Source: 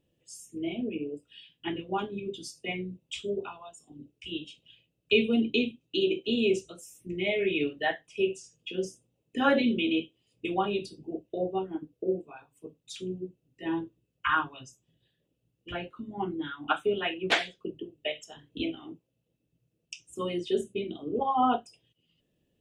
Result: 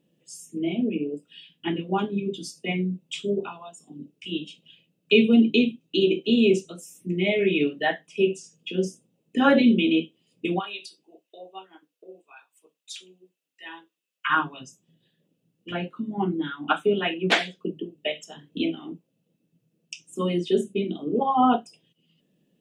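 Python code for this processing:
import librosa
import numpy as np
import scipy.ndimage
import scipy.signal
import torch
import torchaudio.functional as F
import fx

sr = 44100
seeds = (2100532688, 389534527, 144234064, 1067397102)

y = fx.highpass(x, sr, hz=1400.0, slope=12, at=(10.58, 14.29), fade=0.02)
y = fx.low_shelf_res(y, sr, hz=120.0, db=-13.0, q=3.0)
y = y * 10.0 ** (4.0 / 20.0)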